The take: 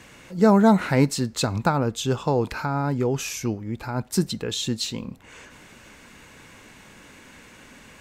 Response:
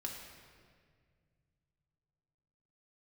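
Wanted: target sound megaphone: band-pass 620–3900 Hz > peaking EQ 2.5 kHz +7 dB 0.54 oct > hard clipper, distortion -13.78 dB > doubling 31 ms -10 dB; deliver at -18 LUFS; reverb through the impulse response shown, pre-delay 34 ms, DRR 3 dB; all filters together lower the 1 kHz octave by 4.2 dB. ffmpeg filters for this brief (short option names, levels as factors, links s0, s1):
-filter_complex "[0:a]equalizer=f=1000:t=o:g=-4.5,asplit=2[s0][s1];[1:a]atrim=start_sample=2205,adelay=34[s2];[s1][s2]afir=irnorm=-1:irlink=0,volume=0.75[s3];[s0][s3]amix=inputs=2:normalize=0,highpass=620,lowpass=3900,equalizer=f=2500:t=o:w=0.54:g=7,asoftclip=type=hard:threshold=0.1,asplit=2[s4][s5];[s5]adelay=31,volume=0.316[s6];[s4][s6]amix=inputs=2:normalize=0,volume=3.76"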